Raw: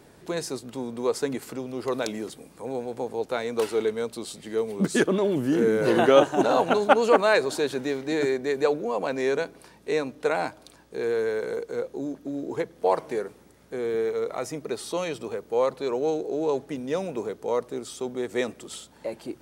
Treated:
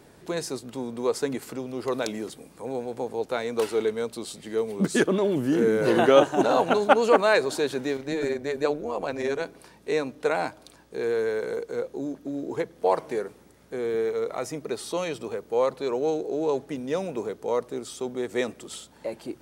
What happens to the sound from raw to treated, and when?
7.97–9.43 AM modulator 150 Hz, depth 45%

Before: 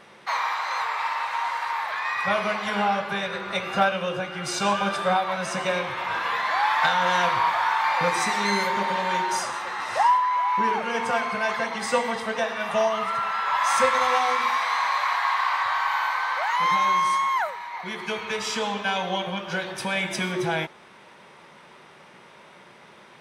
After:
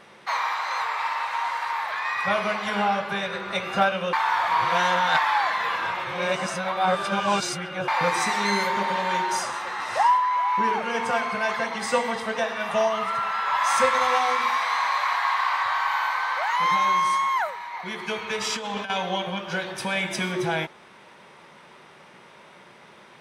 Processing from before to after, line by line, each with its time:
4.13–7.88 reverse
18.41–18.9 negative-ratio compressor -29 dBFS, ratio -0.5

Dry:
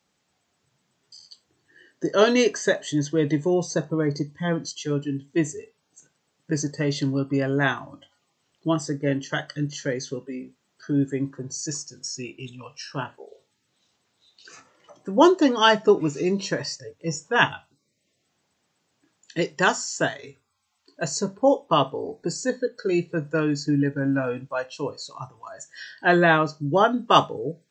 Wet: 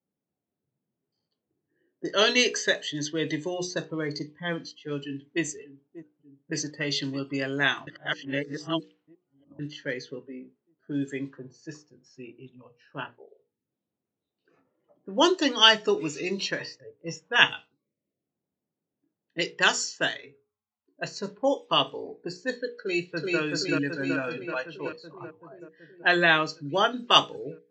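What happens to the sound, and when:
5.01–5.43 echo throw 0.59 s, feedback 70%, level -15 dB
7.87–9.59 reverse
22.78–23.4 echo throw 0.38 s, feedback 70%, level -1 dB
whole clip: notches 60/120/180/240/300/360/420/480 Hz; low-pass opened by the level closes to 370 Hz, open at -19 dBFS; weighting filter D; gain -5.5 dB

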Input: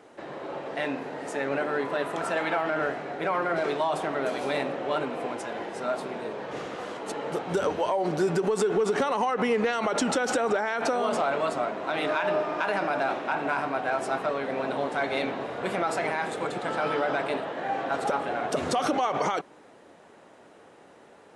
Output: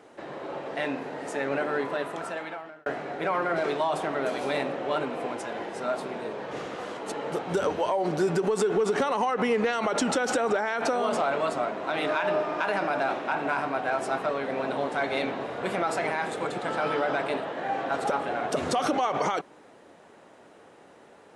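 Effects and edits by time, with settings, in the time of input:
1.8–2.86 fade out

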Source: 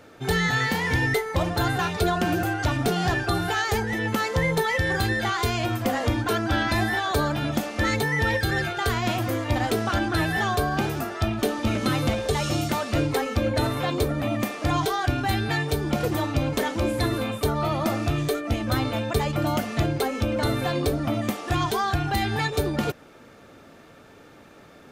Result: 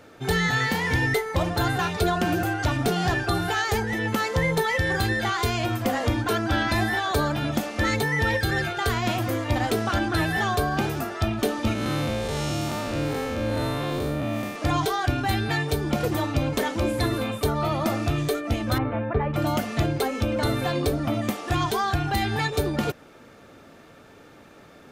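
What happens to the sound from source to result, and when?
11.73–14.56 time blur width 0.185 s
18.78–19.34 LPF 2000 Hz 24 dB/oct

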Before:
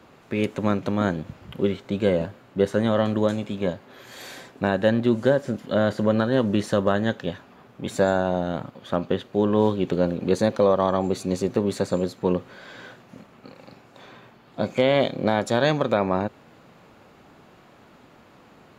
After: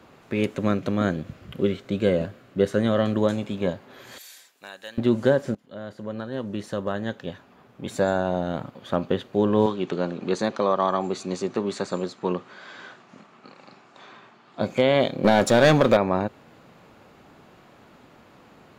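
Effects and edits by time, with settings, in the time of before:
0.52–3.16 bell 890 Hz -9.5 dB 0.3 oct
4.18–4.98 differentiator
5.55–8.8 fade in, from -21 dB
9.66–14.61 speaker cabinet 210–8000 Hz, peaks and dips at 270 Hz -4 dB, 510 Hz -7 dB, 1200 Hz +4 dB
15.24–15.97 sample leveller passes 2

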